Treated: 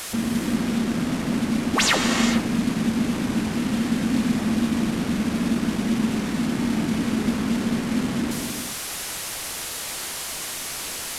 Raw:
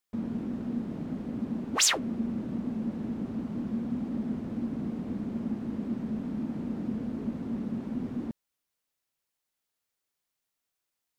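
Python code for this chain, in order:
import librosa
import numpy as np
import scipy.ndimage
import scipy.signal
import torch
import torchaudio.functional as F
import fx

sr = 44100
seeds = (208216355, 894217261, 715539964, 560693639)

y = fx.delta_mod(x, sr, bps=64000, step_db=-33.5)
y = fx.rev_gated(y, sr, seeds[0], gate_ms=480, shape='flat', drr_db=1.5)
y = F.gain(torch.from_numpy(y), 7.5).numpy()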